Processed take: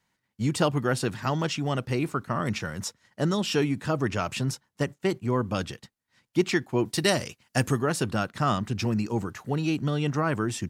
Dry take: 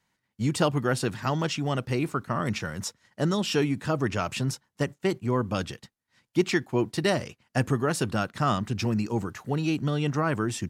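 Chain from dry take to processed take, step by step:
0:06.85–0:07.79: high-shelf EQ 3,500 Hz +10 dB

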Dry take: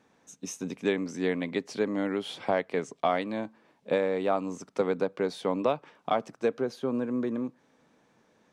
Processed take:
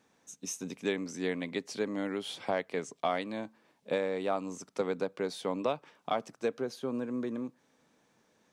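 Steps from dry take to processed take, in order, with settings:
high-shelf EQ 3,800 Hz +8.5 dB
level −5 dB

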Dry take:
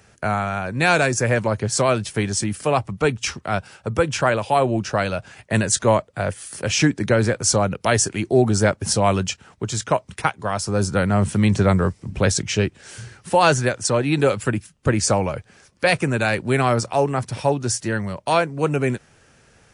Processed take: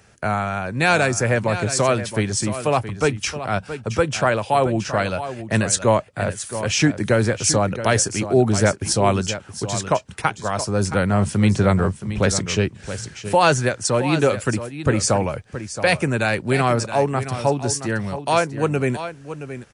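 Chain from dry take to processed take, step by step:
single-tap delay 672 ms −11.5 dB

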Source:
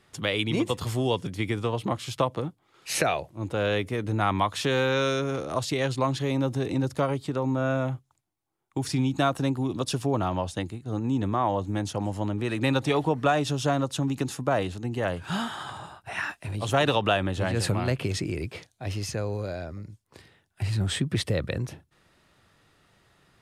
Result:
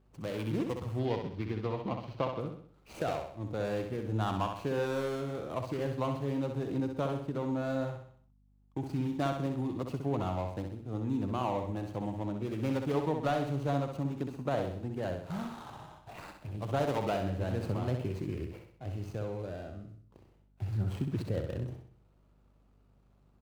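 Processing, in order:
running median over 25 samples
0:00.99–0:02.40: high shelf with overshoot 6,300 Hz −11.5 dB, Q 1.5
on a send: repeating echo 64 ms, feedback 46%, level −6 dB
on the sum: mains hum 50 Hz, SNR 31 dB
level −7 dB

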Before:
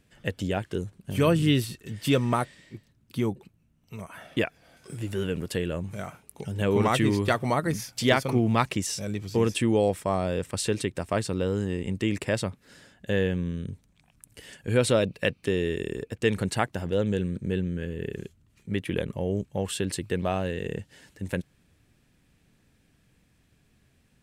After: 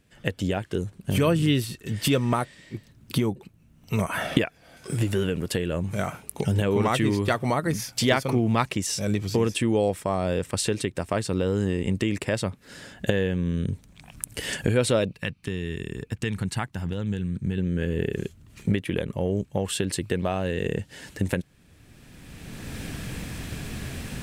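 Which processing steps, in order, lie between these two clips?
camcorder AGC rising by 20 dB per second
0:15.13–0:17.58: drawn EQ curve 160 Hz 0 dB, 560 Hz −13 dB, 880 Hz −4 dB

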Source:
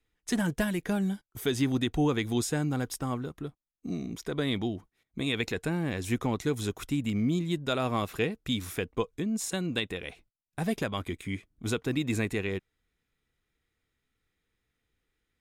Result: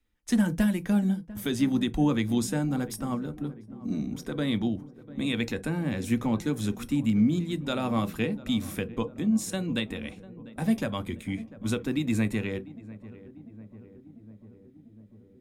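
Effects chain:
feedback echo with a low-pass in the loop 696 ms, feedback 73%, low-pass 1,100 Hz, level −17 dB
on a send at −9 dB: convolution reverb, pre-delay 3 ms
on the sum: level −1.5 dB

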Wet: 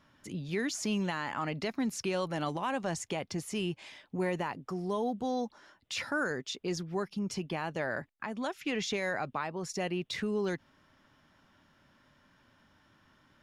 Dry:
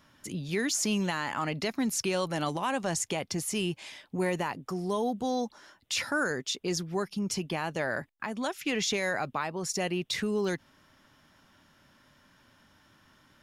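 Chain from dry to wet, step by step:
low-pass filter 3,600 Hz 6 dB per octave
level −2.5 dB

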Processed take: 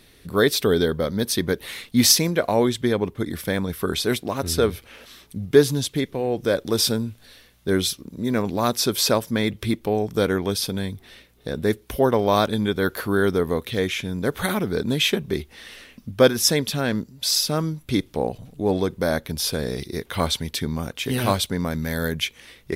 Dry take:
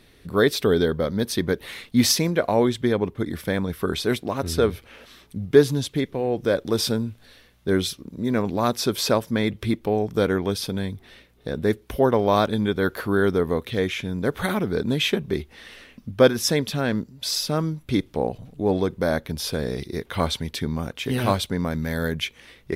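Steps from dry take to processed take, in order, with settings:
high-shelf EQ 4,200 Hz +7.5 dB

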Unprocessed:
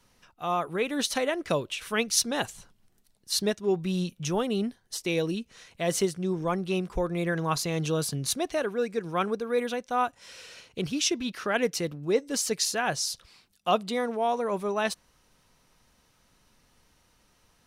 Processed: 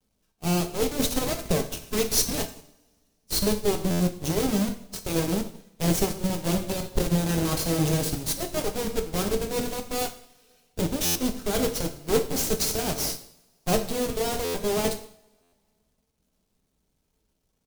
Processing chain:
each half-wave held at its own peak
in parallel at −9.5 dB: bit reduction 5 bits
on the sum: comb filter 4.5 ms, depth 50%
log-companded quantiser 4 bits
harmonic generator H 6 −7 dB, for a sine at −8 dBFS
parametric band 1,500 Hz −12 dB 2.4 octaves
on a send at −3 dB: convolution reverb, pre-delay 3 ms
on the sum: buffer that repeats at 0:03.90/0:11.05/0:14.44/0:15.42, samples 512, times 8
expander for the loud parts 1.5 to 1, over −41 dBFS
level −4 dB

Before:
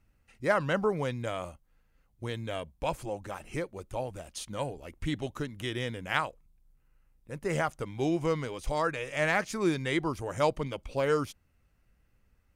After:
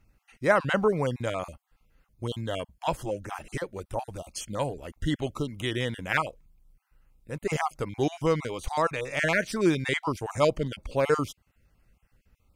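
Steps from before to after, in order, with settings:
time-frequency cells dropped at random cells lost 23%
level +4.5 dB

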